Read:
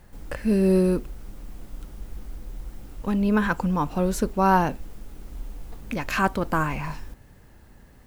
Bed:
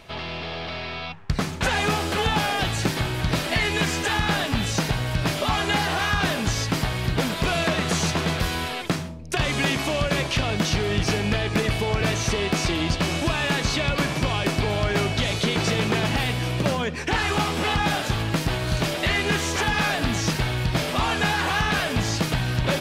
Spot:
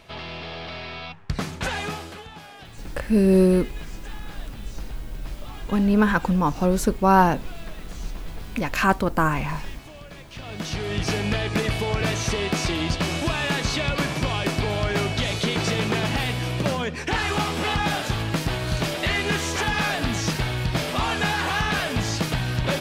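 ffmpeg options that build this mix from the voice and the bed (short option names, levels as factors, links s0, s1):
-filter_complex "[0:a]adelay=2650,volume=1.41[s0];[1:a]volume=5.96,afade=t=out:st=1.56:d=0.69:silence=0.149624,afade=t=in:st=10.3:d=0.88:silence=0.11885[s1];[s0][s1]amix=inputs=2:normalize=0"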